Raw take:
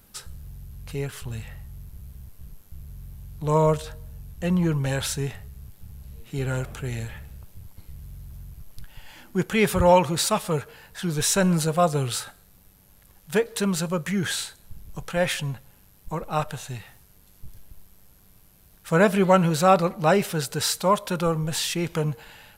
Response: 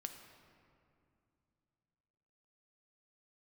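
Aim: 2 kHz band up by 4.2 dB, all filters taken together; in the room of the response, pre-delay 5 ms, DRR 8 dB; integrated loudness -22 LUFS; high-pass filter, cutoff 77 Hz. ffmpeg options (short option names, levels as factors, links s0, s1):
-filter_complex "[0:a]highpass=77,equalizer=f=2000:t=o:g=5.5,asplit=2[s0][s1];[1:a]atrim=start_sample=2205,adelay=5[s2];[s1][s2]afir=irnorm=-1:irlink=0,volume=0.562[s3];[s0][s3]amix=inputs=2:normalize=0,volume=1.06"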